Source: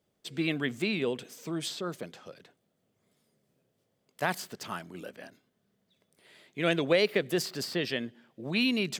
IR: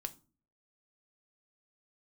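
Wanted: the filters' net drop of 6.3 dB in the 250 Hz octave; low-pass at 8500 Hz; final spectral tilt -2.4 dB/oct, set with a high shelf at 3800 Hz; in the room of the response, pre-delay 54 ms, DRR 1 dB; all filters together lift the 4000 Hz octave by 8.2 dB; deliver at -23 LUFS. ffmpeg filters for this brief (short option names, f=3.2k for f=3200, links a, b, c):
-filter_complex "[0:a]lowpass=8.5k,equalizer=f=250:t=o:g=-9,highshelf=f=3.8k:g=5,equalizer=f=4k:t=o:g=7.5,asplit=2[a][b];[1:a]atrim=start_sample=2205,adelay=54[c];[b][c]afir=irnorm=-1:irlink=0,volume=1dB[d];[a][d]amix=inputs=2:normalize=0,volume=3dB"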